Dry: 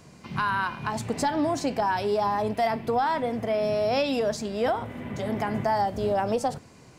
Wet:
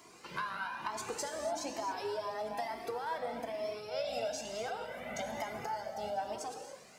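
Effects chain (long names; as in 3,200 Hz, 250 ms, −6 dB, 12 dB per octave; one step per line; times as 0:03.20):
sub-octave generator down 2 octaves, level +2 dB
high-pass filter 390 Hz 12 dB per octave
high-shelf EQ 11,000 Hz +4.5 dB
0:03.78–0:06.22: comb filter 1.4 ms, depth 51%
dynamic equaliser 6,200 Hz, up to +5 dB, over −55 dBFS, Q 2.7
downward compressor 6 to 1, threshold −34 dBFS, peak gain reduction 14 dB
surface crackle 250 per second −59 dBFS
reverb whose tail is shaped and stops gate 310 ms flat, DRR 3.5 dB
flanger whose copies keep moving one way rising 1.1 Hz
level +2 dB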